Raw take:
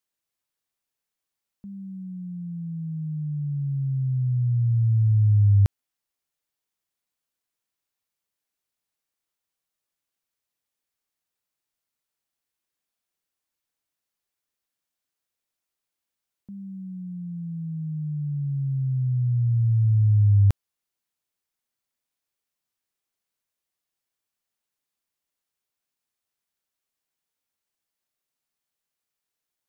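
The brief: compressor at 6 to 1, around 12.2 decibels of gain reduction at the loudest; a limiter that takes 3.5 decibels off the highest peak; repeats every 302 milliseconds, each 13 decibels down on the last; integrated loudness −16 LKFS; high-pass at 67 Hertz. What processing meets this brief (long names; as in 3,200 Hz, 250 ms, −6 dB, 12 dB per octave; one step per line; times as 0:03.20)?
high-pass filter 67 Hz
downward compressor 6 to 1, threshold −30 dBFS
brickwall limiter −29.5 dBFS
repeating echo 302 ms, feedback 22%, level −13 dB
level +18.5 dB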